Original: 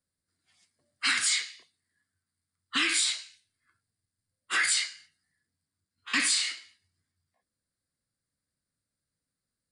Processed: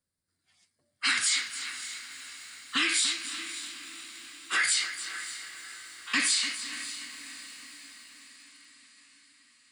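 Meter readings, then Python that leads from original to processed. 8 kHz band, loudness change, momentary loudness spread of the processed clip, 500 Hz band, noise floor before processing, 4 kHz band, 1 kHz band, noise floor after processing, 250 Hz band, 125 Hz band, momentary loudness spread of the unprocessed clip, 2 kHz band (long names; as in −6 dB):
+0.5 dB, −2.0 dB, 19 LU, +0.5 dB, below −85 dBFS, +0.5 dB, +0.5 dB, −80 dBFS, +0.5 dB, can't be measured, 12 LU, +0.5 dB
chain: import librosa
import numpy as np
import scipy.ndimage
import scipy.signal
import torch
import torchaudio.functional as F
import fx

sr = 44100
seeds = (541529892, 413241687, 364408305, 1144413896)

y = fx.echo_diffused(x, sr, ms=575, feedback_pct=59, wet_db=-13.0)
y = fx.echo_crushed(y, sr, ms=292, feedback_pct=55, bits=8, wet_db=-12.0)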